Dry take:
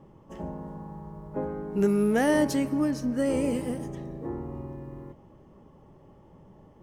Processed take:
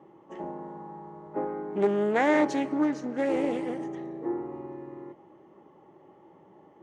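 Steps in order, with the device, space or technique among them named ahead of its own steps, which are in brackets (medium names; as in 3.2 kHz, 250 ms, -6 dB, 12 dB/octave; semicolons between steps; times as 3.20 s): full-range speaker at full volume (loudspeaker Doppler distortion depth 0.3 ms; cabinet simulation 230–6700 Hz, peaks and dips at 240 Hz -4 dB, 340 Hz +9 dB, 820 Hz +6 dB, 1.3 kHz +3 dB, 2 kHz +6 dB, 5.1 kHz -8 dB); trim -1.5 dB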